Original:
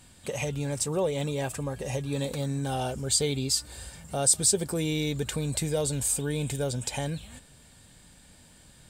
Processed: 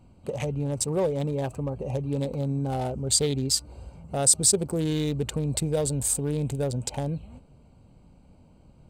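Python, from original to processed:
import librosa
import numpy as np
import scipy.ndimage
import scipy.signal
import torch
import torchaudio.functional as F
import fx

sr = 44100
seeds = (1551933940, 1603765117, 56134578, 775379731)

y = fx.wiener(x, sr, points=25)
y = y * librosa.db_to_amplitude(3.0)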